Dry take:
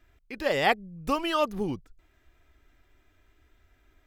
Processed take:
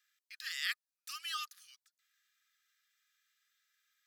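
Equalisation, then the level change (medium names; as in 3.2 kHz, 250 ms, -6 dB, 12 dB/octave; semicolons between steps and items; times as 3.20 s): rippled Chebyshev high-pass 1.2 kHz, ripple 6 dB; differentiator; treble shelf 11 kHz -6.5 dB; +5.0 dB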